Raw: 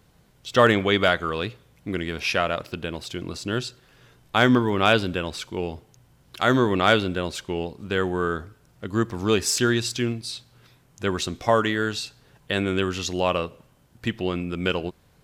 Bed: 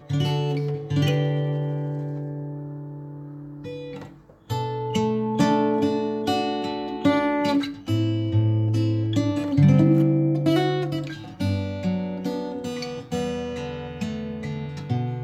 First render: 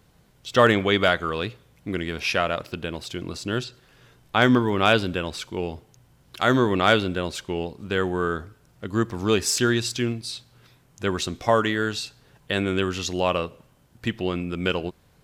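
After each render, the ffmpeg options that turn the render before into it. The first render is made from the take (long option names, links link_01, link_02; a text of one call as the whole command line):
ffmpeg -i in.wav -filter_complex "[0:a]asettb=1/sr,asplit=3[link_01][link_02][link_03];[link_01]atrim=end=3.644[link_04];[link_02]atrim=start=3.64:end=4.42,asetpts=PTS-STARTPTS,afade=type=in:duration=0.004:curve=qsin,afade=type=out:start_time=0.776:duration=0.004:curve=qsin,acrossover=split=4600[link_05][link_06];[link_06]acompressor=threshold=-50dB:ratio=4:attack=1:release=60[link_07];[link_05][link_07]amix=inputs=2:normalize=0[link_08];[link_03]atrim=start=4.416[link_09];[link_04][link_08]acrossfade=duration=0.004:curve1=hsin:curve2=qsin[link_10];[link_10][link_09]acrossfade=duration=0.004:curve1=qsin:curve2=hsin" out.wav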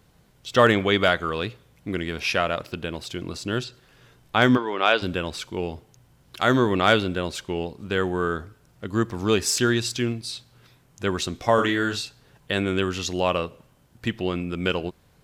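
ffmpeg -i in.wav -filter_complex "[0:a]asplit=3[link_01][link_02][link_03];[link_01]afade=type=out:start_time=4.56:duration=0.02[link_04];[link_02]highpass=440,lowpass=4700,afade=type=in:start_time=4.56:duration=0.02,afade=type=out:start_time=5.01:duration=0.02[link_05];[link_03]afade=type=in:start_time=5.01:duration=0.02[link_06];[link_04][link_05][link_06]amix=inputs=3:normalize=0,asettb=1/sr,asplit=3[link_07][link_08][link_09];[link_07]atrim=end=11.544[link_10];[link_08]atrim=start=11.54:end=12.02,asetpts=PTS-STARTPTS,afade=type=in:duration=0.004:curve=qsin,afade=type=out:start_time=0.476:duration=0.004:curve=qsin,asplit=2[link_11][link_12];[link_12]adelay=40,volume=-5.5dB[link_13];[link_11][link_13]amix=inputs=2:normalize=0,atrim=end_sample=21168[link_14];[link_09]atrim=start=12.016[link_15];[link_10][link_14]acrossfade=duration=0.004:curve1=hsin:curve2=qsin[link_16];[link_16][link_15]acrossfade=duration=0.004:curve1=qsin:curve2=hsin" out.wav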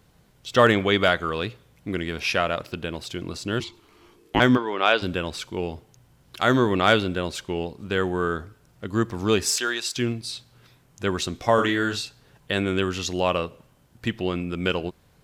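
ffmpeg -i in.wav -filter_complex "[0:a]asettb=1/sr,asplit=3[link_01][link_02][link_03];[link_01]atrim=end=3.604[link_04];[link_02]atrim=start=3.6:end=4.4,asetpts=PTS-STARTPTS,afade=type=in:duration=0.004:curve=qsin,afade=type=out:start_time=0.796:duration=0.004:curve=qsin,afreqshift=-470[link_05];[link_03]atrim=start=4.396[link_06];[link_04][link_05]acrossfade=duration=0.004:curve1=hsin:curve2=qsin[link_07];[link_07][link_06]acrossfade=duration=0.004:curve1=qsin:curve2=hsin,asettb=1/sr,asplit=3[link_08][link_09][link_10];[link_08]atrim=end=9.564[link_11];[link_09]atrim=start=9.56:end=9.97,asetpts=PTS-STARTPTS,afade=type=in:duration=0.004:curve=qsin,afade=type=out:start_time=0.406:duration=0.004:curve=qsin,highpass=590[link_12];[link_10]atrim=start=9.966[link_13];[link_11][link_12]acrossfade=duration=0.004:curve1=hsin:curve2=qsin[link_14];[link_14][link_13]acrossfade=duration=0.004:curve1=qsin:curve2=hsin" out.wav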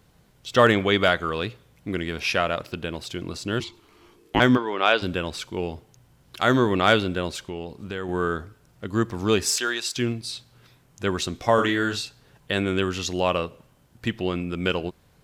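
ffmpeg -i in.wav -filter_complex "[0:a]asettb=1/sr,asplit=3[link_01][link_02][link_03];[link_01]atrim=end=7.364[link_04];[link_02]atrim=start=7.36:end=8.09,asetpts=PTS-STARTPTS,afade=type=in:duration=0.004:curve=qsin,afade=type=out:start_time=0.726:duration=0.004:curve=qsin,acompressor=threshold=-30dB:ratio=2.5:attack=3.2:release=140:knee=1:detection=peak[link_05];[link_03]atrim=start=8.086[link_06];[link_04][link_05]acrossfade=duration=0.004:curve1=hsin:curve2=qsin[link_07];[link_07][link_06]acrossfade=duration=0.004:curve1=qsin:curve2=hsin" out.wav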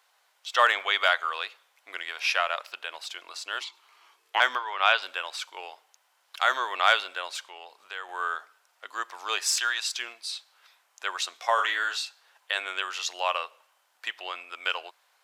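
ffmpeg -i in.wav -af "highpass=frequency=760:width=0.5412,highpass=frequency=760:width=1.3066,highshelf=frequency=8100:gain=-4.5" out.wav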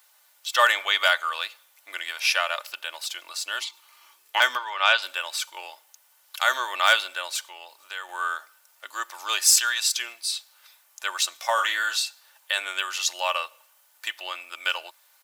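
ffmpeg -i in.wav -af "aemphasis=mode=production:type=bsi,aecho=1:1:3.4:0.47" out.wav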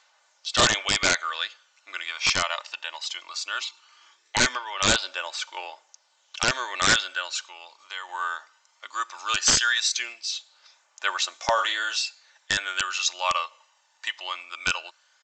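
ffmpeg -i in.wav -af "aresample=16000,aeval=exprs='(mod(3.76*val(0)+1,2)-1)/3.76':channel_layout=same,aresample=44100,aphaser=in_gain=1:out_gain=1:delay=1.1:decay=0.39:speed=0.18:type=triangular" out.wav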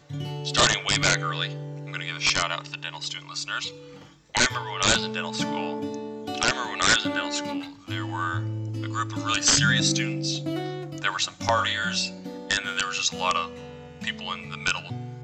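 ffmpeg -i in.wav -i bed.wav -filter_complex "[1:a]volume=-9.5dB[link_01];[0:a][link_01]amix=inputs=2:normalize=0" out.wav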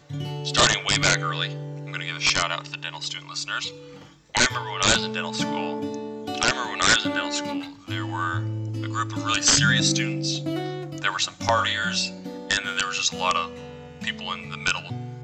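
ffmpeg -i in.wav -af "volume=1.5dB" out.wav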